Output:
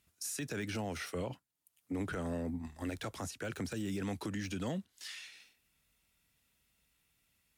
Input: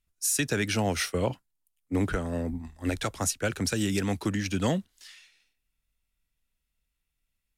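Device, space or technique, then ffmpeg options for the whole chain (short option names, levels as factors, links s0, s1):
podcast mastering chain: -af "highpass=90,deesser=0.9,acompressor=threshold=0.00178:ratio=2,alimiter=level_in=5.62:limit=0.0631:level=0:latency=1:release=46,volume=0.178,volume=3.16" -ar 48000 -c:a libmp3lame -b:a 96k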